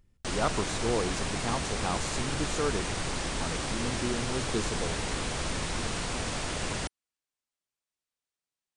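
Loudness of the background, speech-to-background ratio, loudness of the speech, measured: −32.5 LKFS, −2.0 dB, −34.5 LKFS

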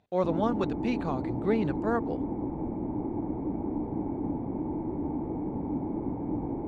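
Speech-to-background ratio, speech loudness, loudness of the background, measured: 2.0 dB, −31.0 LKFS, −33.0 LKFS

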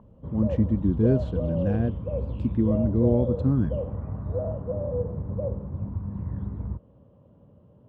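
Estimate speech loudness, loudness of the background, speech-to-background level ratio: −25.5 LKFS, −31.5 LKFS, 6.0 dB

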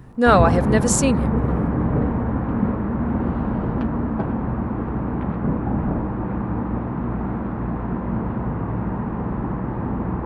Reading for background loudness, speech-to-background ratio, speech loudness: −23.5 LKFS, 5.0 dB, −18.5 LKFS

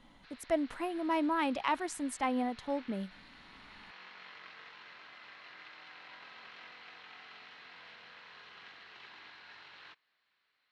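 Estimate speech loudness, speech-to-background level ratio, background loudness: −34.0 LKFS, 18.0 dB, −52.0 LKFS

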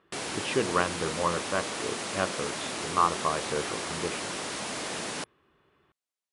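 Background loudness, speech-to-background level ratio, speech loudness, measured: −33.5 LKFS, 2.0 dB, −31.5 LKFS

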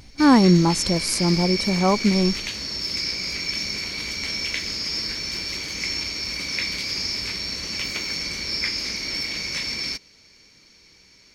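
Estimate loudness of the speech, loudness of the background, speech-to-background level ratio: −19.5 LKFS, −25.5 LKFS, 6.0 dB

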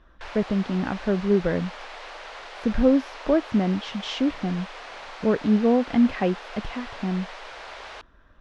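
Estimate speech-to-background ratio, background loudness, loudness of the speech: 14.5 dB, −39.0 LKFS, −24.5 LKFS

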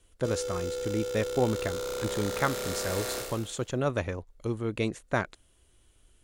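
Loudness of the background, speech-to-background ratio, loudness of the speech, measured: −34.0 LKFS, 1.5 dB, −32.5 LKFS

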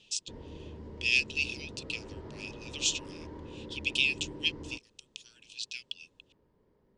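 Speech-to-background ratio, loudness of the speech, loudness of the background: 14.5 dB, −31.5 LKFS, −46.0 LKFS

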